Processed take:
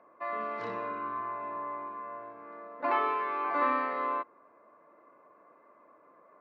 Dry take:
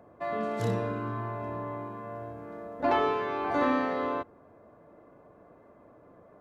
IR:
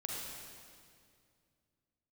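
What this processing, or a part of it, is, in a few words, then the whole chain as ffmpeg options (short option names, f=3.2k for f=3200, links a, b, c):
phone earpiece: -af "highpass=400,equalizer=f=440:t=q:w=4:g=-4,equalizer=f=750:t=q:w=4:g=-6,equalizer=f=1.1k:t=q:w=4:g=9,equalizer=f=2.2k:t=q:w=4:g=5,equalizer=f=3.4k:t=q:w=4:g=-8,lowpass=f=4.1k:w=0.5412,lowpass=f=4.1k:w=1.3066,volume=-2.5dB"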